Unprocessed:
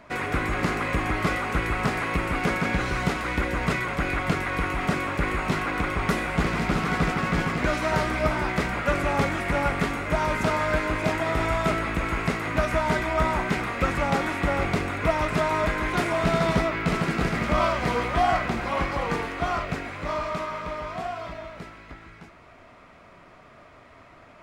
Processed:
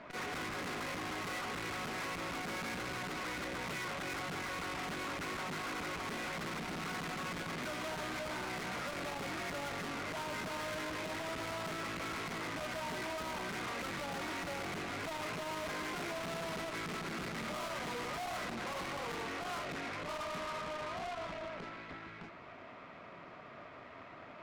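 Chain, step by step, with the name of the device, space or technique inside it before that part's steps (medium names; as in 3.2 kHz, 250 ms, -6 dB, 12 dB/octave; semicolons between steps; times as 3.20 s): valve radio (band-pass 130–4300 Hz; valve stage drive 40 dB, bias 0.55; transformer saturation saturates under 190 Hz); trim +2 dB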